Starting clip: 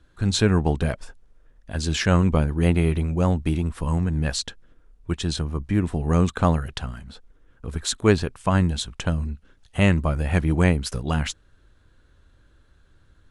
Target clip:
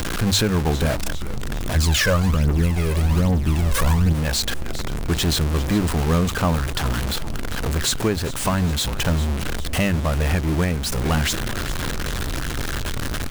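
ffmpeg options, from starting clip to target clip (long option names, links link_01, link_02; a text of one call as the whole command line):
ffmpeg -i in.wav -filter_complex "[0:a]aeval=exprs='val(0)+0.5*0.119*sgn(val(0))':channel_layout=same,asplit=6[link_01][link_02][link_03][link_04][link_05][link_06];[link_02]adelay=402,afreqshift=-150,volume=-15dB[link_07];[link_03]adelay=804,afreqshift=-300,volume=-21dB[link_08];[link_04]adelay=1206,afreqshift=-450,volume=-27dB[link_09];[link_05]adelay=1608,afreqshift=-600,volume=-33.1dB[link_10];[link_06]adelay=2010,afreqshift=-750,volume=-39.1dB[link_11];[link_01][link_07][link_08][link_09][link_10][link_11]amix=inputs=6:normalize=0,asplit=3[link_12][link_13][link_14];[link_12]afade=type=out:start_time=1.75:duration=0.02[link_15];[link_13]aphaser=in_gain=1:out_gain=1:delay=2:decay=0.62:speed=1.2:type=triangular,afade=type=in:start_time=1.75:duration=0.02,afade=type=out:start_time=4.12:duration=0.02[link_16];[link_14]afade=type=in:start_time=4.12:duration=0.02[link_17];[link_15][link_16][link_17]amix=inputs=3:normalize=0,bandreject=frequency=50:width_type=h:width=6,bandreject=frequency=100:width_type=h:width=6,alimiter=limit=-10dB:level=0:latency=1:release=488" out.wav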